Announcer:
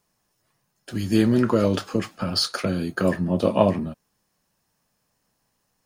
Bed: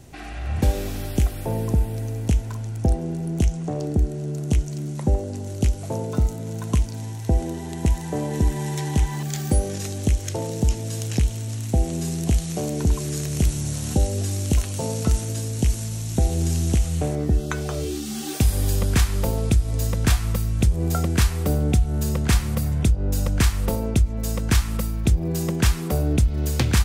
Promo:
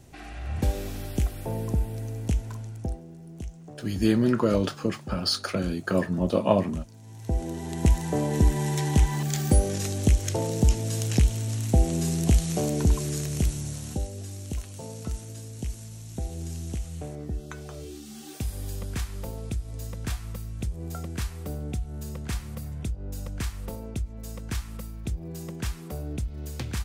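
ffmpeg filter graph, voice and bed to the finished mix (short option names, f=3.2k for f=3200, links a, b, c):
-filter_complex "[0:a]adelay=2900,volume=-3dB[a];[1:a]volume=11.5dB,afade=t=out:st=2.53:d=0.52:silence=0.266073,afade=t=in:st=7.02:d=0.86:silence=0.141254,afade=t=out:st=12.63:d=1.49:silence=0.237137[b];[a][b]amix=inputs=2:normalize=0"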